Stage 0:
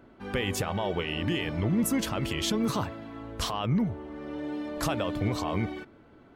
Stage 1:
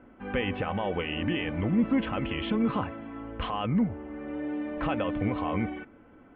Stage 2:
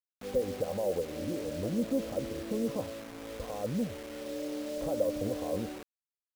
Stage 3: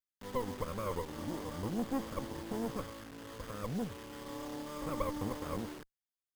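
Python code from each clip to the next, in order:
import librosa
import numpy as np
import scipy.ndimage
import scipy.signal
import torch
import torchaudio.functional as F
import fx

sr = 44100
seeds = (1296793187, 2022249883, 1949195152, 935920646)

y1 = scipy.signal.sosfilt(scipy.signal.butter(8, 3000.0, 'lowpass', fs=sr, output='sos'), x)
y1 = y1 + 0.37 * np.pad(y1, (int(3.9 * sr / 1000.0), 0))[:len(y1)]
y2 = fx.lowpass_res(y1, sr, hz=550.0, q=4.9)
y2 = fx.quant_dither(y2, sr, seeds[0], bits=6, dither='none')
y2 = F.gain(torch.from_numpy(y2), -9.0).numpy()
y3 = fx.lower_of_two(y2, sr, delay_ms=0.62)
y3 = F.gain(torch.from_numpy(y3), -3.5).numpy()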